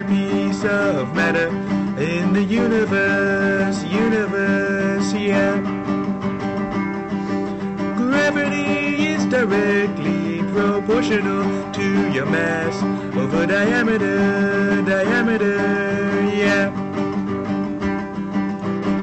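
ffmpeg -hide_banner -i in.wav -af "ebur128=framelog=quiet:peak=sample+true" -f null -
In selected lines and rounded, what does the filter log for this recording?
Integrated loudness:
  I:         -19.3 LUFS
  Threshold: -29.3 LUFS
Loudness range:
  LRA:         3.0 LU
  Threshold: -39.2 LUFS
  LRA low:   -21.0 LUFS
  LRA high:  -18.0 LUFS
Sample peak:
  Peak:      -11.5 dBFS
True peak:
  Peak:      -11.3 dBFS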